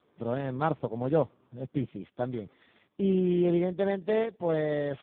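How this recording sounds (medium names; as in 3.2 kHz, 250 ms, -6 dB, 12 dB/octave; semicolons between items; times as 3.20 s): a buzz of ramps at a fixed pitch in blocks of 8 samples; AMR-NB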